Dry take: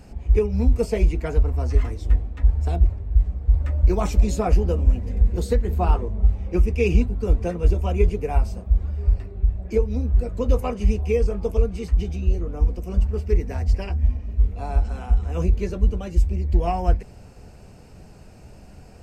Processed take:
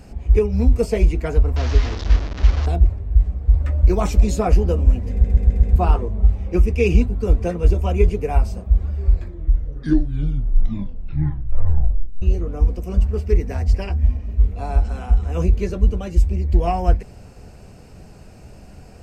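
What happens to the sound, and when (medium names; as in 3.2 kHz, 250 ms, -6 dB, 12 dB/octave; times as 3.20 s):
1.56–2.66 s: one-bit delta coder 32 kbps, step -26.5 dBFS
5.11 s: stutter in place 0.13 s, 5 plays
8.91 s: tape stop 3.31 s
whole clip: band-stop 890 Hz, Q 29; trim +3 dB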